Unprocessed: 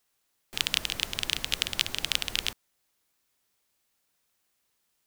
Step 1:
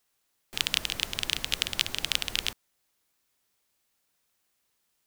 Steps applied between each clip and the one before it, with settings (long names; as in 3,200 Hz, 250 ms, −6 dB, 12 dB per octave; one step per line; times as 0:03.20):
no processing that can be heard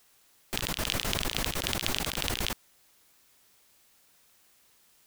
compressor whose output falls as the input rises −38 dBFS, ratio −1
level +6 dB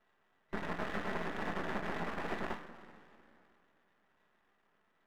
coupled-rooms reverb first 0.31 s, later 2.7 s, from −16 dB, DRR 0 dB
brick-wall band-pass 140–2,000 Hz
half-wave rectification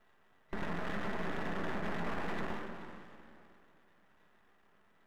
low-shelf EQ 140 Hz +6 dB
brickwall limiter −30.5 dBFS, peak gain reduction 10 dB
echo through a band-pass that steps 108 ms, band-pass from 160 Hz, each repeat 1.4 octaves, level −5 dB
level +4.5 dB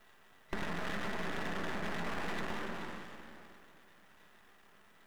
high-shelf EQ 2,600 Hz +10 dB
downward compressor, threshold −36 dBFS, peak gain reduction 6.5 dB
level +4 dB